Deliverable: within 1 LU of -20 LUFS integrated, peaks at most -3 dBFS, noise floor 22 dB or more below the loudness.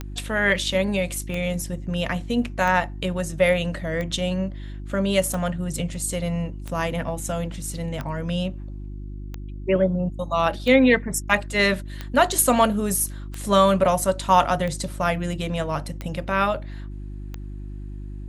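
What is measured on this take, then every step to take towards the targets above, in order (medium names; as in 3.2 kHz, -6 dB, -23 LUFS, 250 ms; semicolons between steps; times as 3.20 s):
clicks found 14; hum 50 Hz; highest harmonic 350 Hz; hum level -31 dBFS; loudness -23.0 LUFS; peak level -3.5 dBFS; loudness target -20.0 LUFS
-> de-click; de-hum 50 Hz, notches 7; trim +3 dB; peak limiter -3 dBFS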